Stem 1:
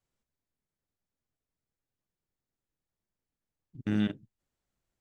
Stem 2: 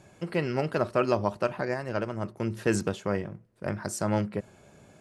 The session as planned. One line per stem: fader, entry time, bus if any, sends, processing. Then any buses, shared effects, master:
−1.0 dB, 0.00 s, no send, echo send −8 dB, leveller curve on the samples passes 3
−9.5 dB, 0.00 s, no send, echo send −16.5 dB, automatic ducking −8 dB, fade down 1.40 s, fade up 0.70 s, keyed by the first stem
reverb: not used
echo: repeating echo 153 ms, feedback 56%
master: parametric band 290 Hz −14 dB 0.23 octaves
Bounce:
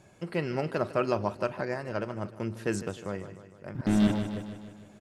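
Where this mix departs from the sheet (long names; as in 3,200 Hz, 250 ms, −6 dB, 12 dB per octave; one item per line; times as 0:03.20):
stem 2 −9.5 dB → −2.5 dB
master: missing parametric band 290 Hz −14 dB 0.23 octaves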